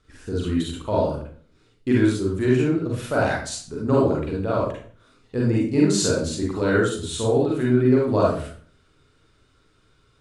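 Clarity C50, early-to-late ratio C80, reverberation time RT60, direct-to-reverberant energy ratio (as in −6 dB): 0.0 dB, 6.5 dB, 0.50 s, −5.0 dB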